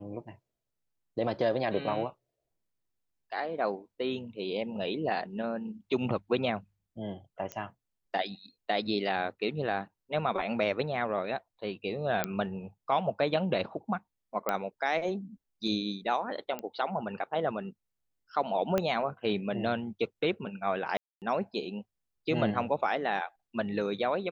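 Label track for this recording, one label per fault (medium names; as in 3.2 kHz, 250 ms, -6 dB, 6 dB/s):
7.520000	7.520000	pop -22 dBFS
12.240000	12.240000	pop -12 dBFS
14.490000	14.490000	pop -15 dBFS
16.590000	16.590000	pop -22 dBFS
18.780000	18.780000	pop -14 dBFS
20.970000	21.220000	dropout 248 ms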